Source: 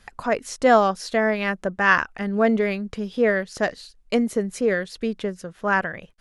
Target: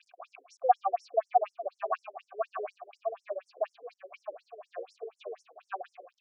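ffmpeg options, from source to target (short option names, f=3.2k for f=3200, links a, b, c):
-filter_complex "[0:a]aeval=exprs='val(0)+0.5*0.0282*sgn(val(0))':c=same,asplit=3[a][b][c];[a]bandpass=f=730:t=q:w=8,volume=0dB[d];[b]bandpass=f=1.09k:t=q:w=8,volume=-6dB[e];[c]bandpass=f=2.44k:t=q:w=8,volume=-9dB[f];[d][e][f]amix=inputs=3:normalize=0,equalizer=f=710:w=7.1:g=7.5,asplit=2[g][h];[h]adelay=648,lowpass=f=2.7k:p=1,volume=-6dB,asplit=2[i][j];[j]adelay=648,lowpass=f=2.7k:p=1,volume=0.34,asplit=2[k][l];[l]adelay=648,lowpass=f=2.7k:p=1,volume=0.34,asplit=2[m][n];[n]adelay=648,lowpass=f=2.7k:p=1,volume=0.34[o];[i][k][m][o]amix=inputs=4:normalize=0[p];[g][p]amix=inputs=2:normalize=0,afftfilt=real='re*between(b*sr/1024,370*pow(7600/370,0.5+0.5*sin(2*PI*4.1*pts/sr))/1.41,370*pow(7600/370,0.5+0.5*sin(2*PI*4.1*pts/sr))*1.41)':imag='im*between(b*sr/1024,370*pow(7600/370,0.5+0.5*sin(2*PI*4.1*pts/sr))/1.41,370*pow(7600/370,0.5+0.5*sin(2*PI*4.1*pts/sr))*1.41)':win_size=1024:overlap=0.75"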